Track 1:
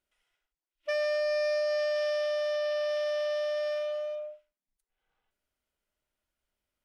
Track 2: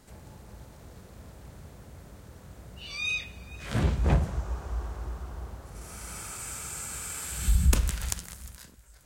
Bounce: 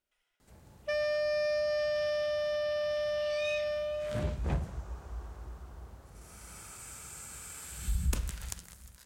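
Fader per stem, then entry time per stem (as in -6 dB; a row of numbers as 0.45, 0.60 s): -2.0, -8.5 dB; 0.00, 0.40 s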